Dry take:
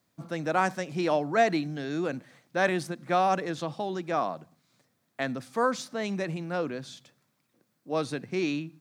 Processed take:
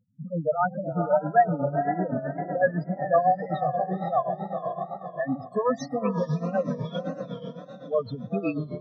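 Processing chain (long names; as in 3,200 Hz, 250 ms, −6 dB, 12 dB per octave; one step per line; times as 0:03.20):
parametric band 350 Hz −13 dB 0.38 octaves
spectral peaks only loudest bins 4
on a send: feedback delay with all-pass diffusion 479 ms, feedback 46%, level −6.5 dB
on the sum: amplitude tremolo 7.9 Hz, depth 77%
in parallel at +1.5 dB: downward compressor, threshold −39 dBFS, peak gain reduction 17 dB
on the sum: tape wow and flutter 110 cents
level +6 dB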